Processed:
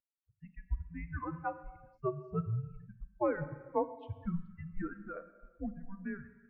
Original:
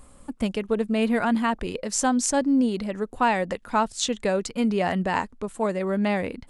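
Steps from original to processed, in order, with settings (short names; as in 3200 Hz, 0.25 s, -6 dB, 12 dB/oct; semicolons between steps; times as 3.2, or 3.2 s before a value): per-bin expansion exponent 3; mistuned SSB -390 Hz 320–2100 Hz; non-linear reverb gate 0.49 s falling, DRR 10.5 dB; gain -5.5 dB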